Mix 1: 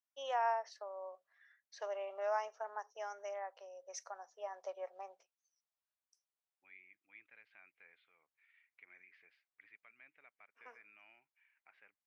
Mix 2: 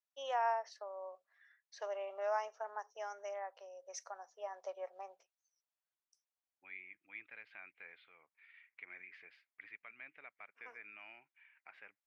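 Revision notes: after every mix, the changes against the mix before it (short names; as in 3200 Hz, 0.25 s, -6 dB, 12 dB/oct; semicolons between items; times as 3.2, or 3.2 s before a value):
second voice +9.0 dB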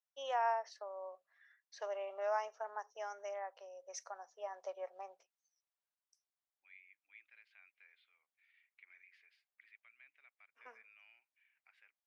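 second voice: add differentiator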